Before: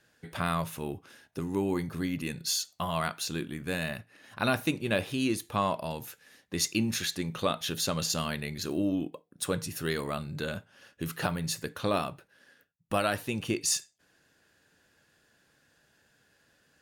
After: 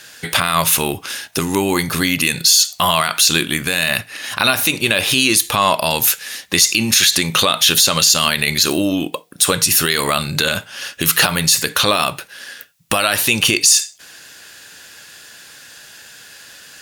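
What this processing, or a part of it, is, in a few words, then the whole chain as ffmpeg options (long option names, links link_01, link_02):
mastering chain: -af "equalizer=frequency=1700:width_type=o:width=0.77:gain=-2.5,acompressor=threshold=-34dB:ratio=2,tiltshelf=frequency=970:gain=-9,asoftclip=type=hard:threshold=-15dB,alimiter=level_in=24dB:limit=-1dB:release=50:level=0:latency=1,volume=-1dB"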